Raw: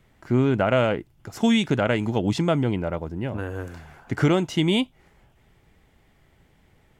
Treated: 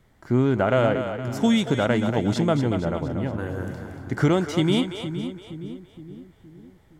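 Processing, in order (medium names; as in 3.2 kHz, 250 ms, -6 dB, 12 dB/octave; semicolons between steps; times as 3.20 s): peaking EQ 2.6 kHz -7.5 dB 0.39 oct; on a send: two-band feedback delay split 380 Hz, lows 467 ms, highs 233 ms, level -8 dB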